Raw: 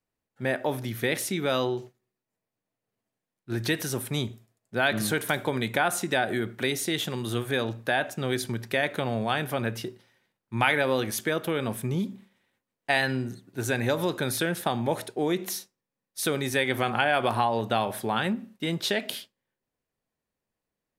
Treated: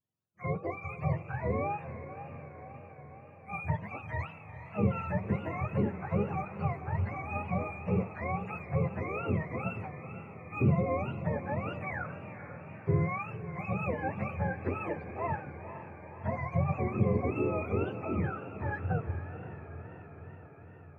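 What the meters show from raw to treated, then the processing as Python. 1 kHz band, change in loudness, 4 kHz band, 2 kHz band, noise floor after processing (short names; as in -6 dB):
-6.5 dB, -6.0 dB, under -30 dB, -12.0 dB, -51 dBFS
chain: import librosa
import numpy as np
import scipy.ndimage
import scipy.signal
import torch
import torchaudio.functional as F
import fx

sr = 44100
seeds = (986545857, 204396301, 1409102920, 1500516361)

y = fx.octave_mirror(x, sr, pivot_hz=540.0)
y = fx.echo_diffused(y, sr, ms=468, feedback_pct=68, wet_db=-11.5)
y = fx.wow_flutter(y, sr, seeds[0], rate_hz=2.1, depth_cents=94.0)
y = y * librosa.db_to_amplitude(-5.5)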